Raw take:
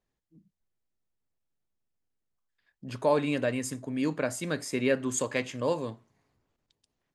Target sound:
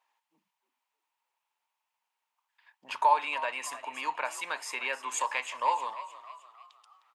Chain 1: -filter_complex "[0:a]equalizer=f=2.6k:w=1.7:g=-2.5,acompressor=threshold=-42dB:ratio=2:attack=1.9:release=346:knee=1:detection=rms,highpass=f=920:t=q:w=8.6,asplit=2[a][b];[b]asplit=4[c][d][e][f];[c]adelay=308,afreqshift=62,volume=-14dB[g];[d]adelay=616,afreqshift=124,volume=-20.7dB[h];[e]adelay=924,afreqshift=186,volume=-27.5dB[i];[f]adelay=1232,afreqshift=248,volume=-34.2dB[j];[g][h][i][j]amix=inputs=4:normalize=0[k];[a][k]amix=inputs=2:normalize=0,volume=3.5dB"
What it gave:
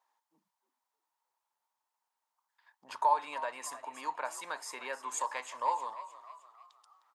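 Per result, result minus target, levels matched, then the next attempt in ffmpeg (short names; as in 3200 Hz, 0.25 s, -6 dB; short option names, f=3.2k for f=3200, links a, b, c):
2000 Hz band -4.0 dB; compressor: peak gain reduction +2.5 dB
-filter_complex "[0:a]equalizer=f=2.6k:w=1.7:g=9.5,acompressor=threshold=-42dB:ratio=2:attack=1.9:release=346:knee=1:detection=rms,highpass=f=920:t=q:w=8.6,asplit=2[a][b];[b]asplit=4[c][d][e][f];[c]adelay=308,afreqshift=62,volume=-14dB[g];[d]adelay=616,afreqshift=124,volume=-20.7dB[h];[e]adelay=924,afreqshift=186,volume=-27.5dB[i];[f]adelay=1232,afreqshift=248,volume=-34.2dB[j];[g][h][i][j]amix=inputs=4:normalize=0[k];[a][k]amix=inputs=2:normalize=0,volume=3.5dB"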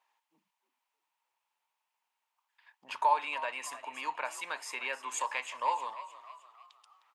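compressor: peak gain reduction +3 dB
-filter_complex "[0:a]equalizer=f=2.6k:w=1.7:g=9.5,acompressor=threshold=-35.5dB:ratio=2:attack=1.9:release=346:knee=1:detection=rms,highpass=f=920:t=q:w=8.6,asplit=2[a][b];[b]asplit=4[c][d][e][f];[c]adelay=308,afreqshift=62,volume=-14dB[g];[d]adelay=616,afreqshift=124,volume=-20.7dB[h];[e]adelay=924,afreqshift=186,volume=-27.5dB[i];[f]adelay=1232,afreqshift=248,volume=-34.2dB[j];[g][h][i][j]amix=inputs=4:normalize=0[k];[a][k]amix=inputs=2:normalize=0,volume=3.5dB"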